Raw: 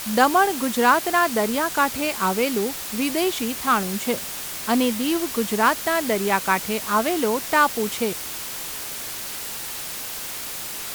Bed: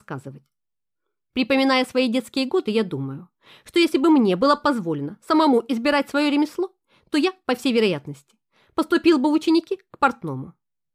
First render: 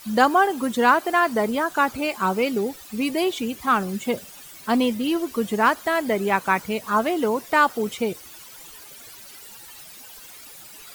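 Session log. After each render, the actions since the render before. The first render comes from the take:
broadband denoise 15 dB, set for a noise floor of −32 dBFS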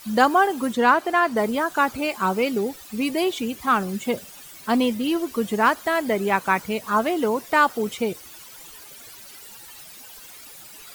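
0:00.73–0:01.37: high-shelf EQ 7,300 Hz −8 dB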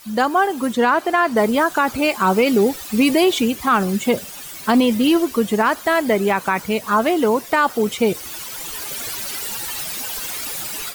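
automatic gain control gain up to 15.5 dB
brickwall limiter −7 dBFS, peak gain reduction 6.5 dB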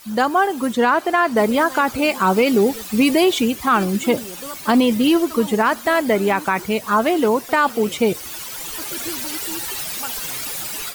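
mix in bed −17 dB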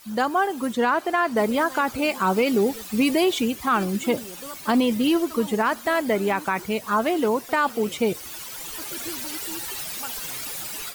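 level −5 dB

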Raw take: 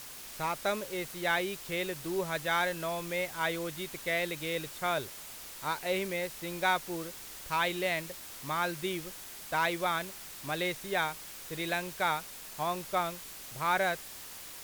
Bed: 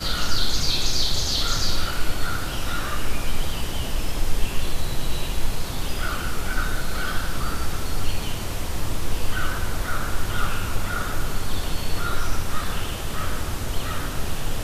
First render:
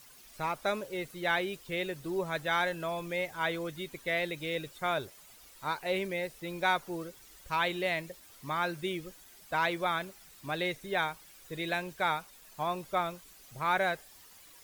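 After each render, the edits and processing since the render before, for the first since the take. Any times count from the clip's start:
broadband denoise 12 dB, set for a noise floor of −46 dBFS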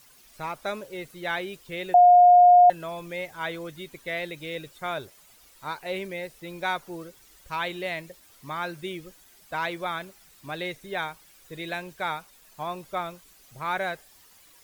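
0:01.94–0:02.70: beep over 713 Hz −10.5 dBFS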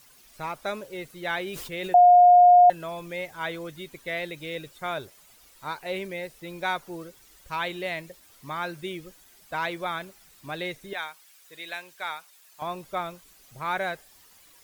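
0:01.38–0:01.97: level that may fall only so fast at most 35 dB per second
0:10.93–0:12.62: high-pass filter 1,300 Hz 6 dB per octave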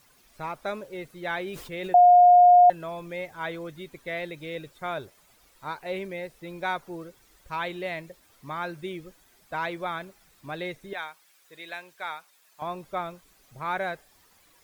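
high-shelf EQ 2,800 Hz −7 dB
notch filter 2,900 Hz, Q 30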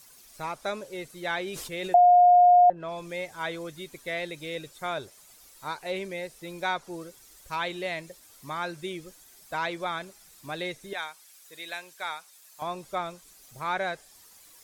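treble cut that deepens with the level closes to 810 Hz, closed at −15 dBFS
bass and treble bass −2 dB, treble +11 dB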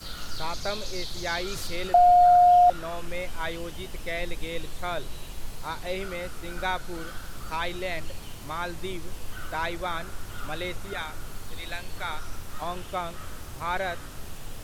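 mix in bed −13 dB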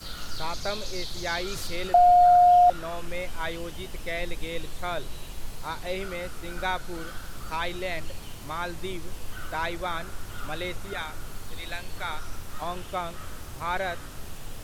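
no processing that can be heard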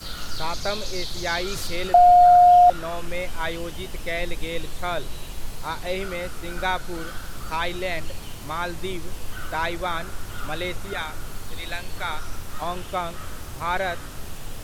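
level +4 dB

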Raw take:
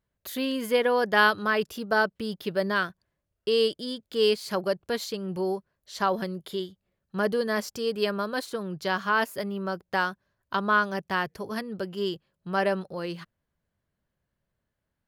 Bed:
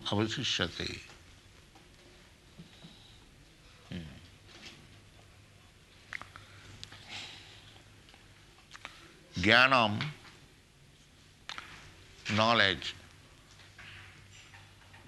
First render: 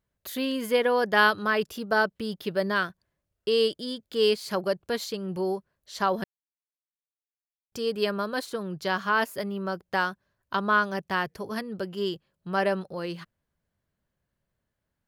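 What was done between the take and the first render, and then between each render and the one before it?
0:06.24–0:07.72: silence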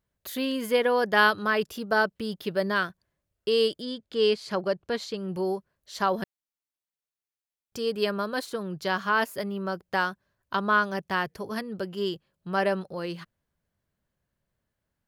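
0:03.82–0:05.17: high-frequency loss of the air 65 metres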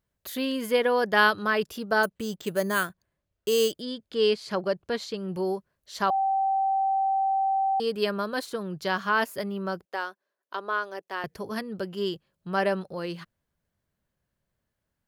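0:02.03–0:03.72: bad sample-rate conversion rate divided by 4×, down filtered, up hold
0:06.10–0:07.80: beep over 776 Hz −21.5 dBFS
0:09.85–0:11.24: four-pole ladder high-pass 310 Hz, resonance 30%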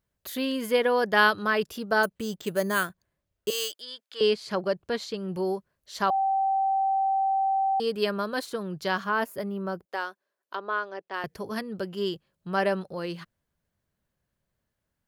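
0:03.50–0:04.21: high-pass filter 990 Hz
0:09.04–0:09.89: parametric band 4,200 Hz −7.5 dB 2.7 octaves
0:10.55–0:11.14: high-frequency loss of the air 130 metres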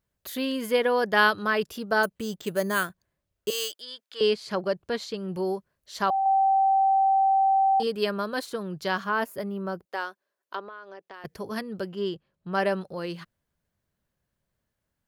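0:06.23–0:07.87: double-tracking delay 27 ms −5 dB
0:10.65–0:11.25: downward compressor, threshold −39 dBFS
0:11.92–0:12.55: low-pass filter 2,700 Hz 6 dB per octave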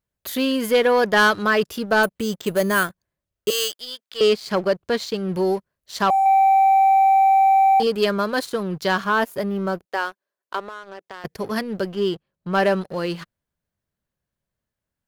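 leveller curve on the samples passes 2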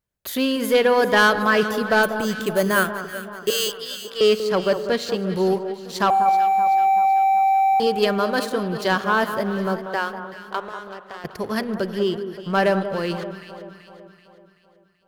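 delay that swaps between a low-pass and a high-pass 191 ms, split 1,400 Hz, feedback 69%, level −9 dB
spring reverb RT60 2.1 s, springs 42 ms, chirp 70 ms, DRR 15.5 dB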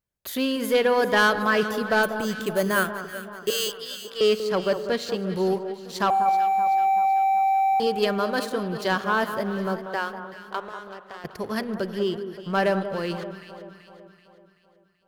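level −3.5 dB

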